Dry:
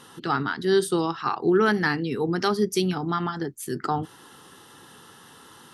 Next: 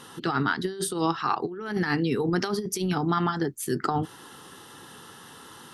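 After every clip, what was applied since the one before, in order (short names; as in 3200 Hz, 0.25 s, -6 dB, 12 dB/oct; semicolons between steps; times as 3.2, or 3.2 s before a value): negative-ratio compressor -25 dBFS, ratio -0.5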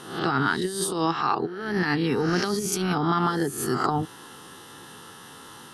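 spectral swells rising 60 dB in 0.62 s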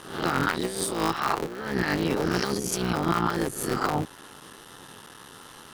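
cycle switcher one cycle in 3, muted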